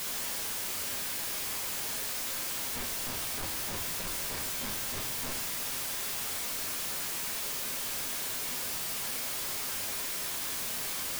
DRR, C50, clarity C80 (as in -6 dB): 1.0 dB, 9.0 dB, 13.5 dB